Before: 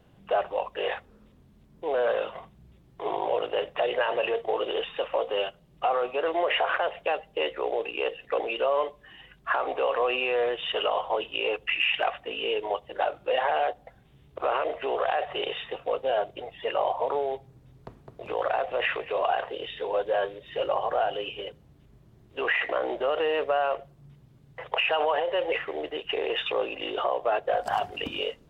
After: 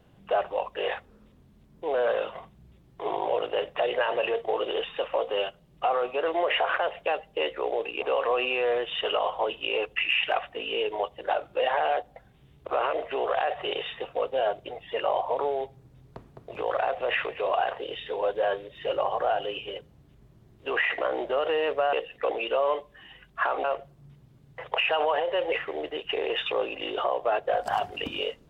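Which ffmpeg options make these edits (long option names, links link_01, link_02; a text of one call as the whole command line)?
ffmpeg -i in.wav -filter_complex "[0:a]asplit=4[link_01][link_02][link_03][link_04];[link_01]atrim=end=8.022[link_05];[link_02]atrim=start=9.728:end=23.642[link_06];[link_03]atrim=start=8.018:end=9.732[link_07];[link_04]atrim=start=23.638[link_08];[link_05][link_06]acrossfade=duration=0.004:curve1=hsin:curve2=hsin[link_09];[link_09][link_07]acrossfade=duration=0.004:curve1=hsin:curve2=hsin[link_10];[link_10][link_08]acrossfade=duration=0.004:curve1=hsin:curve2=hsin" out.wav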